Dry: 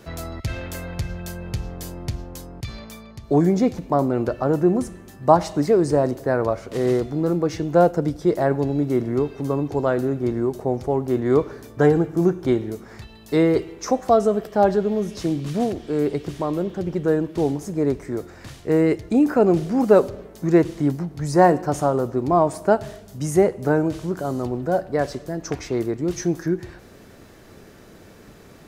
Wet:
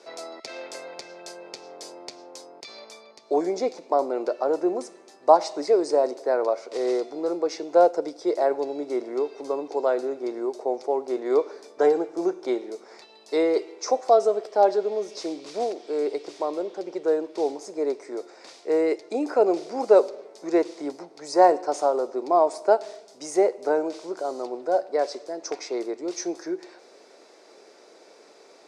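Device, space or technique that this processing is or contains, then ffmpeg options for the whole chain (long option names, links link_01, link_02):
phone speaker on a table: -af "highpass=frequency=400:width=0.5412,highpass=frequency=400:width=1.3066,equalizer=frequency=1200:width_type=q:width=4:gain=-5,equalizer=frequency=1700:width_type=q:width=4:gain=-9,equalizer=frequency=3000:width_type=q:width=4:gain=-8,equalizer=frequency=4900:width_type=q:width=4:gain=4,equalizer=frequency=7100:width_type=q:width=4:gain=-3,lowpass=frequency=8100:width=0.5412,lowpass=frequency=8100:width=1.3066"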